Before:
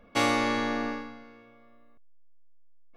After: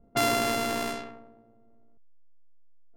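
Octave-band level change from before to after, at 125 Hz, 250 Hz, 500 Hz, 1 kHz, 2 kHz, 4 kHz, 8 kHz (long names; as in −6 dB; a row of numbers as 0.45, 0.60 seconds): +0.5, −3.5, +2.0, 0.0, −2.0, +1.5, +6.5 decibels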